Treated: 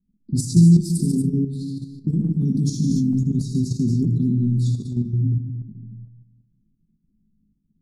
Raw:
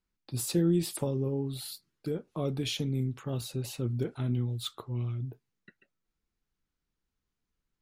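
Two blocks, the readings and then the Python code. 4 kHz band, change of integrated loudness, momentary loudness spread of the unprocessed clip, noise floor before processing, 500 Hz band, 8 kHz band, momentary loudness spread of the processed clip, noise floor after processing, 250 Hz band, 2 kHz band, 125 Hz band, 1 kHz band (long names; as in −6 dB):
−1.5 dB, +12.0 dB, 10 LU, below −85 dBFS, −2.5 dB, +6.0 dB, 15 LU, −69 dBFS, +14.0 dB, below −25 dB, +13.5 dB, below −20 dB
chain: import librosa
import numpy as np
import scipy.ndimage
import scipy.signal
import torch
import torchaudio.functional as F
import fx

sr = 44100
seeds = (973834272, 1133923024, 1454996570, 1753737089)

p1 = fx.env_lowpass(x, sr, base_hz=640.0, full_db=-28.0)
p2 = scipy.signal.sosfilt(scipy.signal.butter(2, 7900.0, 'lowpass', fs=sr, output='sos'), p1)
p3 = fx.peak_eq(p2, sr, hz=200.0, db=10.5, octaves=1.1)
p4 = fx.room_shoebox(p3, sr, seeds[0], volume_m3=2800.0, walls='furnished', distance_m=1.3)
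p5 = fx.over_compress(p4, sr, threshold_db=-32.0, ratio=-1.0)
p6 = p4 + (p5 * librosa.db_to_amplitude(-2.0))
p7 = scipy.signal.sosfilt(scipy.signal.cheby2(4, 40, [520.0, 3100.0], 'bandstop', fs=sr, output='sos'), p6)
p8 = fx.low_shelf(p7, sr, hz=77.0, db=-4.0)
p9 = fx.doubler(p8, sr, ms=19.0, db=-6.0)
p10 = fx.echo_multitap(p9, sr, ms=(82, 143, 228, 238), db=(-8.5, -11.5, -13.0, -11.5))
p11 = fx.level_steps(p10, sr, step_db=9)
y = p11 * librosa.db_to_amplitude(8.0)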